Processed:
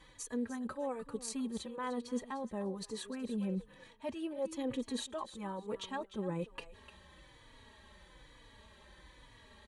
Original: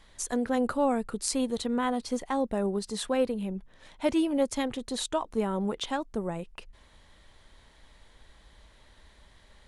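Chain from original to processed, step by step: high shelf 5600 Hz -5 dB; notch 5100 Hz, Q 8.6; reverse; compressor 6:1, threshold -37 dBFS, peak gain reduction 15.5 dB; reverse; notch comb 710 Hz; on a send: thinning echo 0.301 s, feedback 20%, high-pass 420 Hz, level -12.5 dB; on the sum: endless flanger 3.5 ms -1.1 Hz; gain +5 dB

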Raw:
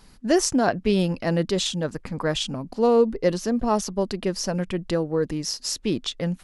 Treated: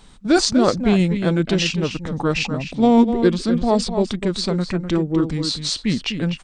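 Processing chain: outdoor echo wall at 43 m, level -8 dB; formant shift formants -4 st; gain +4.5 dB

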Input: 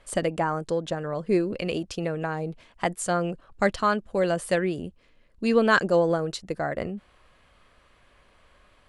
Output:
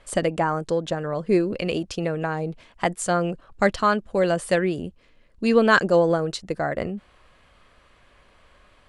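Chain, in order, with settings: LPF 11000 Hz; gain +3 dB

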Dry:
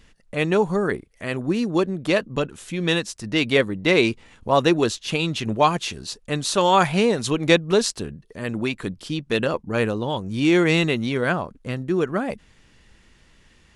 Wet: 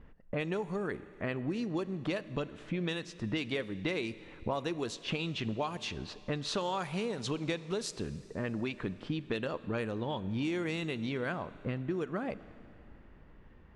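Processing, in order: low-pass opened by the level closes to 1100 Hz, open at -15 dBFS; compressor 12:1, threshold -31 dBFS, peak gain reduction 21 dB; Schroeder reverb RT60 3 s, combs from 28 ms, DRR 15.5 dB

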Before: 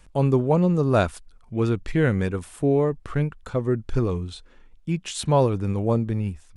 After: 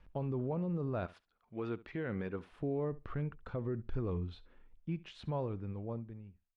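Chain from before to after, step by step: ending faded out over 2.17 s; 1.05–2.51 HPF 870 Hz -> 200 Hz 6 dB/oct; limiter -20 dBFS, peak gain reduction 11 dB; air absorption 310 m; flutter echo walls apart 11.8 m, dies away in 0.21 s; gain -8 dB

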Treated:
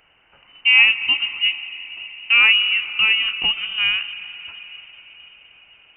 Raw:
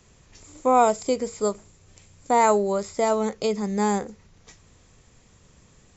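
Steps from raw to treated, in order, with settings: tracing distortion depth 0.026 ms; HPF 320 Hz 24 dB/oct; reverb RT60 5.1 s, pre-delay 0.117 s, DRR 12.5 dB; inverted band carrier 3300 Hz; gain +5 dB

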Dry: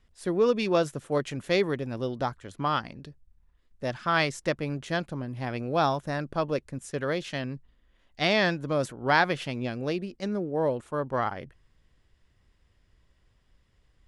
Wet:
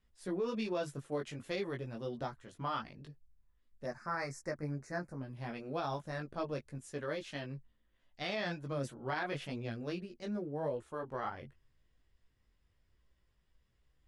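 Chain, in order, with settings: chorus voices 4, 0.4 Hz, delay 18 ms, depth 4.8 ms; 3.86–5.21 Chebyshev band-stop 1900–5200 Hz, order 2; limiter -20.5 dBFS, peak gain reduction 10 dB; gain -6.5 dB

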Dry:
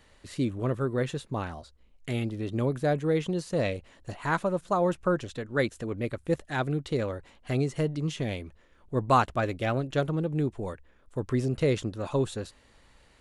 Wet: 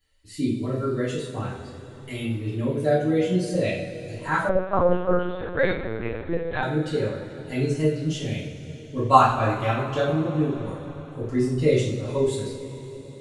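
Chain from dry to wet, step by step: per-bin expansion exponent 1.5; two-slope reverb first 0.53 s, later 4.8 s, from -18 dB, DRR -10 dB; 4.49–6.63 LPC vocoder at 8 kHz pitch kept; gain -2 dB

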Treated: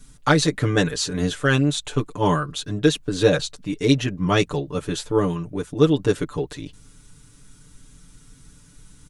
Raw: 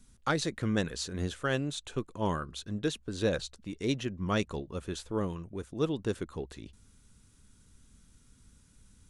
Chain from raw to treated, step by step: comb 6.8 ms, depth 96%; gain +9 dB

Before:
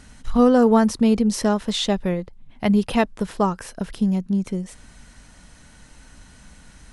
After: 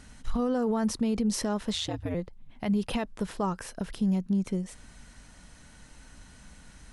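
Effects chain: limiter -16 dBFS, peak gain reduction 11 dB; 1.74–2.15 ring modulator 82 Hz; gain -4 dB

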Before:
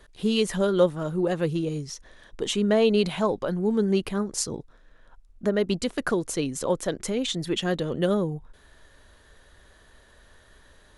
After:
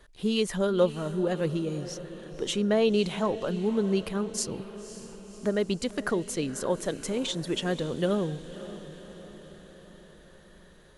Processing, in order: diffused feedback echo 0.548 s, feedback 57%, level -14 dB; gain -3 dB

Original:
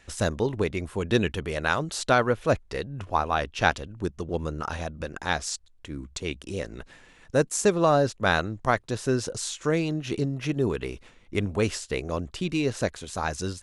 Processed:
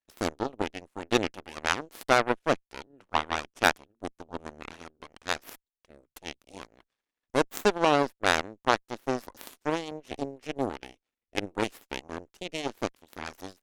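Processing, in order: added harmonics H 7 -17 dB, 8 -21 dB, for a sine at -4 dBFS; resonant low shelf 200 Hz -6.5 dB, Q 1.5

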